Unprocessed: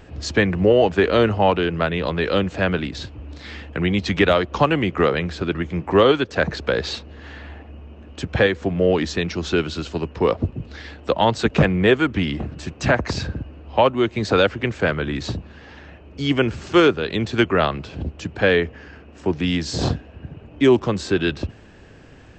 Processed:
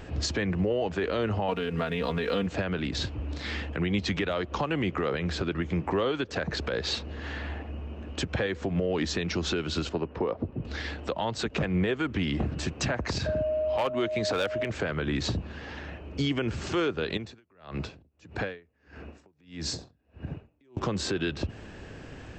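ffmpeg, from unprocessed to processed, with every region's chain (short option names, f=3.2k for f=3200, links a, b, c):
-filter_complex "[0:a]asettb=1/sr,asplit=3[a][b][c];[a]atrim=end=1.484[d];[b]atrim=start=1.48:end=2.47,asetpts=PTS-STARTPTS,afade=t=in:d=0.004:c=qsin,afade=t=out:st=0.986:d=0.004:c=qsin,aecho=1:1:4.3:0.8,atrim=end_sample=43659,aeval=exprs='sgn(val(0))*max(abs(val(0))-0.00447,0)':c=same[e];[c]atrim=start=2.466[f];[d][e]acrossfade=d=0.004:c1=hsin:c2=qsin[g];[g][f]acrossfade=d=0.004:c1=qsin:c2=hsin,asettb=1/sr,asplit=3[h][i][j];[h]atrim=end=9.894[k];[i]atrim=start=9.89:end=10.65,asetpts=PTS-STARTPTS,afade=t=in:d=0.004:c=qsin,afade=t=out:st=0.756:d=0.004:c=qsin,lowpass=f=1.1k:p=1,lowshelf=f=170:g=-9.5[l];[j]atrim=start=10.646[m];[k][l]acrossfade=d=0.004:c1=hsin:c2=qsin[n];[n][m]acrossfade=d=0.004:c1=qsin:c2=hsin,asettb=1/sr,asplit=3[o][p][q];[o]atrim=end=13.264[r];[p]atrim=start=13.26:end=14.7,asetpts=PTS-STARTPTS,afade=t=in:d=0.004:c=qsin,afade=t=out:st=1.436:d=0.004:c=qsin,aeval=exprs='val(0)+0.0631*sin(2*PI*620*n/s)':c=same,asoftclip=type=hard:threshold=-9dB,lowshelf=f=370:g=-6.5[s];[q]atrim=start=14.696[t];[r][s]acrossfade=d=0.004:c1=hsin:c2=qsin[u];[u][t]acrossfade=d=0.004:c1=qsin:c2=hsin,asettb=1/sr,asplit=3[v][w][x];[v]atrim=end=17.174[y];[w]atrim=start=17.17:end=20.77,asetpts=PTS-STARTPTS,afade=t=in:d=0.004:c=qsin,afade=t=out:st=3.596:d=0.004:c=qsin,bandreject=f=3.1k:w=11,acompressor=threshold=-28dB:ratio=16:attack=3.2:release=140:knee=1:detection=peak,aeval=exprs='val(0)*pow(10,-35*(0.5-0.5*cos(2*PI*1.6*n/s))/20)':c=same[z];[x]atrim=start=20.766[aa];[y][z]acrossfade=d=0.004:c1=hsin:c2=qsin[ab];[ab][aa]acrossfade=d=0.004:c1=qsin:c2=hsin,acompressor=threshold=-27dB:ratio=2,alimiter=limit=-21dB:level=0:latency=1:release=108,volume=2dB"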